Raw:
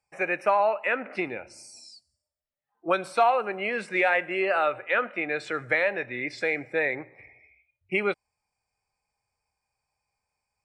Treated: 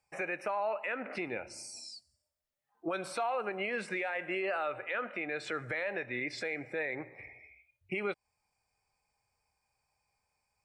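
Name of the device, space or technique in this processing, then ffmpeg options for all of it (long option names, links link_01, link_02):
stacked limiters: -af "alimiter=limit=-17dB:level=0:latency=1:release=29,alimiter=limit=-20.5dB:level=0:latency=1:release=334,alimiter=level_in=3dB:limit=-24dB:level=0:latency=1:release=161,volume=-3dB,volume=1.5dB"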